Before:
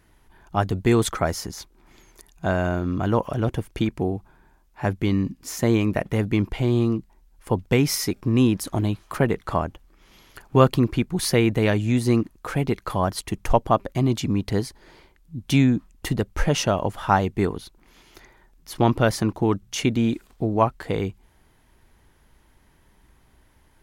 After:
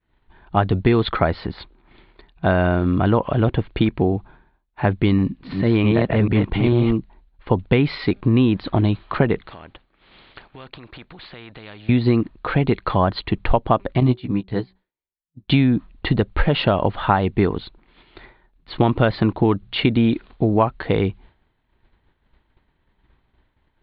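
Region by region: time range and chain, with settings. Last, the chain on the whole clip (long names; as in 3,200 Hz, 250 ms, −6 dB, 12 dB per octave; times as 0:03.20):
0:05.18–0:06.94: delay that plays each chunk backwards 220 ms, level −3.5 dB + transient designer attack −10 dB, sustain −1 dB
0:09.47–0:11.89: notch filter 1,000 Hz, Q 20 + downward compressor 5 to 1, threshold −33 dBFS + every bin compressed towards the loudest bin 2 to 1
0:14.00–0:15.48: double-tracking delay 16 ms −4 dB + hum removal 187.8 Hz, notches 4 + expander for the loud parts 2.5 to 1, over −29 dBFS
whole clip: downward expander −47 dBFS; Butterworth low-pass 4,300 Hz 96 dB per octave; downward compressor, threshold −19 dBFS; level +7 dB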